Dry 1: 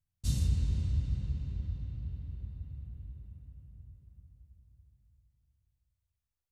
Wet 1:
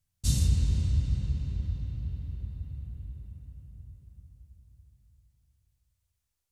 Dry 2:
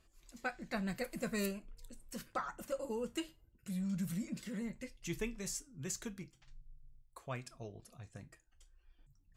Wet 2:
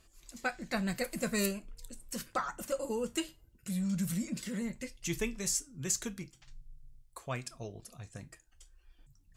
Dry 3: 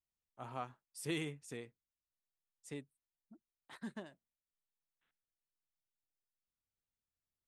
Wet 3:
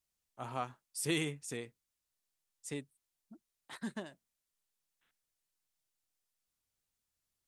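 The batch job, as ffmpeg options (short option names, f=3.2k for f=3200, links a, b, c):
-af "equalizer=f=8.4k:w=0.47:g=5.5,volume=4.5dB"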